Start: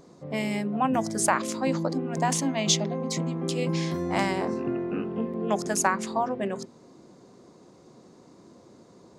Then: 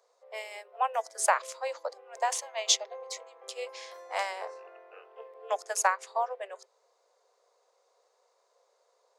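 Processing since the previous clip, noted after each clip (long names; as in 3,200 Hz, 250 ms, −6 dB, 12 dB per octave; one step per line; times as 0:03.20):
Butterworth high-pass 460 Hz 72 dB per octave
expander for the loud parts 1.5 to 1, over −42 dBFS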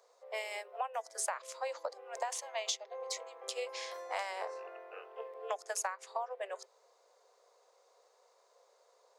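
downward compressor 6 to 1, threshold −37 dBFS, peak gain reduction 17 dB
level +2.5 dB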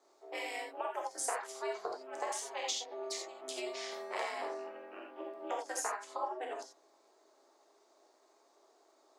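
ring modulation 130 Hz
reverb whose tail is shaped and stops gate 110 ms flat, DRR 0 dB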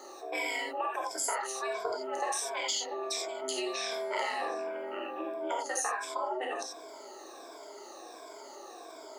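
rippled gain that drifts along the octave scale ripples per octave 1.7, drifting −1.4 Hz, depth 16 dB
envelope flattener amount 50%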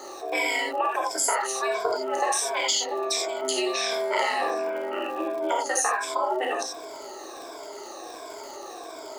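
surface crackle 130 per second −44 dBFS
level +8 dB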